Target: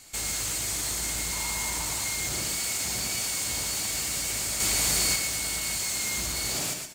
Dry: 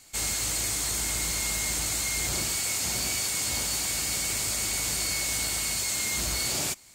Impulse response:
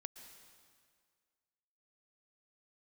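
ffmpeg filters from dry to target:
-filter_complex "[0:a]asettb=1/sr,asplit=3[a][b][c];[a]atrim=end=1.324[d];[b]atrim=start=1.32:end=2.04,asetpts=PTS-STARTPTS,afade=t=in:d=0.004:c=qsin,afade=t=out:st=0.716:d=0.004:c=qsin,equalizer=f=950:w=4.7:g=12[e];[c]atrim=start=2.036[f];[d][e]acrossfade=d=0.004:c1=hsin:c2=qsin[g];[g][f]acrossfade=d=0.004:c1=qsin:c2=hsin[h];[1:a]atrim=start_sample=2205,atrim=end_sample=6615[i];[h][i]afir=irnorm=-1:irlink=0,alimiter=level_in=4.5dB:limit=-24dB:level=0:latency=1,volume=-4.5dB,asoftclip=type=tanh:threshold=-33dB,asettb=1/sr,asplit=3[j][k][l];[j]atrim=end=4.604[m];[k]atrim=start=4.6:end=5.16,asetpts=PTS-STARTPTS,afade=t=in:d=0.004:c=qsin,afade=t=out:st=0.556:d=0.004:c=qsin,acontrast=36[n];[l]atrim=start=5.156[o];[m][n]acrossfade=d=0.004:c1=hsin:c2=qsin[p];[p][o]acrossfade=d=0.004:c1=qsin:c2=hsin,aecho=1:1:118:0.447,volume=8.5dB"

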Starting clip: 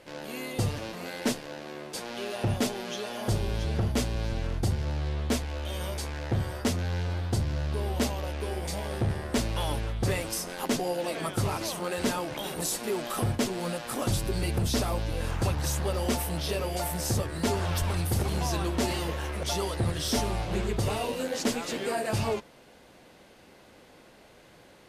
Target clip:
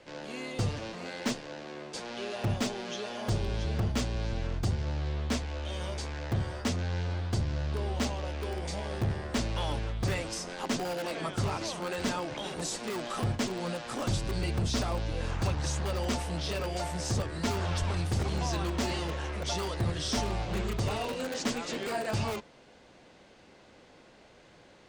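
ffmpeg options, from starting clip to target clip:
-filter_complex "[0:a]lowpass=f=7.8k:w=0.5412,lowpass=f=7.8k:w=1.3066,acrossover=split=360|510|3500[a][b][c][d];[b]aeval=exprs='(mod(59.6*val(0)+1,2)-1)/59.6':c=same[e];[a][e][c][d]amix=inputs=4:normalize=0,volume=-2dB"

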